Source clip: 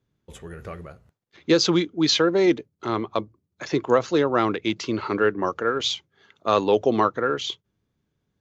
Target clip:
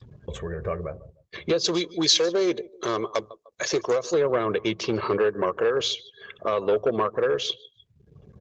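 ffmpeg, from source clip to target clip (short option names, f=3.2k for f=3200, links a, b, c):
-filter_complex "[0:a]aecho=1:1:1.8:0.71,acompressor=threshold=-23dB:ratio=8,acrusher=bits=11:mix=0:aa=0.000001,aecho=1:1:151|302:0.0841|0.0202,adynamicequalizer=threshold=0.01:dfrequency=370:dqfactor=0.71:tfrequency=370:tqfactor=0.71:attack=5:release=100:ratio=0.375:range=3:mode=boostabove:tftype=bell,volume=17.5dB,asoftclip=hard,volume=-17.5dB,highpass=49,asettb=1/sr,asplit=3[a][b][c];[a]atrim=end=1.644[d];[b]atrim=start=1.64:end=4.14,asetpts=PTS-STARTPTS,afade=t=in:d=0.004:c=qsin,afade=t=out:st=2.496:d=0.004:c=qsin,bass=f=250:g=-7,treble=f=4k:g=14[e];[c]atrim=start=4.136[f];[d][e]acrossfade=d=0.004:c1=hsin:c2=qsin[g];[g][f]acrossfade=d=0.004:c1=qsin:c2=hsin,aresample=16000,aresample=44100,acompressor=mode=upward:threshold=-27dB:ratio=2.5,afftdn=nr=25:nf=-46,volume=1dB" -ar 48000 -c:a libopus -b:a 16k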